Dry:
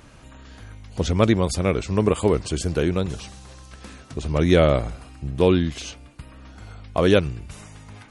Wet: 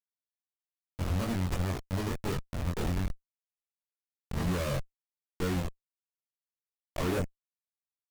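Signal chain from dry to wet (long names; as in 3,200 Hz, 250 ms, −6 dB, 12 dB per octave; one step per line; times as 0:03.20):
comparator with hysteresis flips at −21 dBFS
multi-voice chorus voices 4, 0.54 Hz, delay 22 ms, depth 1 ms
level −5.5 dB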